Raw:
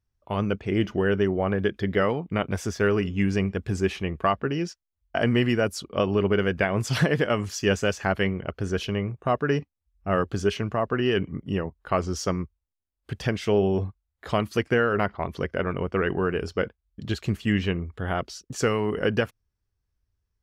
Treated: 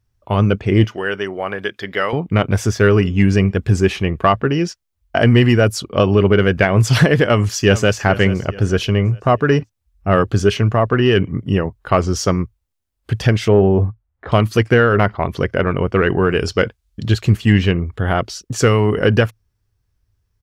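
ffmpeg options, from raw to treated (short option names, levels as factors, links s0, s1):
-filter_complex "[0:a]asettb=1/sr,asplit=3[s0][s1][s2];[s0]atrim=end=0.844[s3];[s1]atrim=start=0.84:end=2.13,asetpts=PTS-STARTPTS,afade=t=in:d=0.004:c=qsin,afade=t=out:st=1.286:d=0.004:c=qsin,highpass=f=1200:p=1[s4];[s2]atrim=start=2.126[s5];[s3][s4]acrossfade=d=0.004:c1=hsin:c2=qsin[s6];[s6][s5]acrossfade=d=0.004:c1=qsin:c2=hsin,asplit=2[s7][s8];[s8]afade=t=in:st=7.25:d=0.01,afade=t=out:st=7.97:d=0.01,aecho=0:1:430|860|1290|1720:0.16788|0.0671522|0.0268609|0.0107443[s9];[s7][s9]amix=inputs=2:normalize=0,asettb=1/sr,asplit=3[s10][s11][s12];[s10]atrim=end=13.484[s13];[s11]atrim=start=13.48:end=14.32,asetpts=PTS-STARTPTS,afade=t=in:d=0.004:c=qsin,afade=t=out:st=0.836:d=0.004:c=qsin,lowpass=1600[s14];[s12]atrim=start=14.316[s15];[s13][s14]acrossfade=d=0.004:c1=hsin:c2=qsin[s16];[s16][s15]acrossfade=d=0.004:c1=qsin:c2=hsin,asettb=1/sr,asplit=3[s17][s18][s19];[s17]atrim=end=16.304[s20];[s18]atrim=start=16.3:end=17.08,asetpts=PTS-STARTPTS,afade=t=in:d=0.004:c=qsin,afade=t=out:st=0.776:d=0.004:c=qsin,equalizer=f=5900:w=0.43:g=7[s21];[s19]atrim=start=17.076[s22];[s20][s21]acrossfade=d=0.004:c1=hsin:c2=qsin[s23];[s23][s22]acrossfade=d=0.004:c1=qsin:c2=hsin,equalizer=f=110:w=4:g=7.5,acontrast=68,volume=1.41"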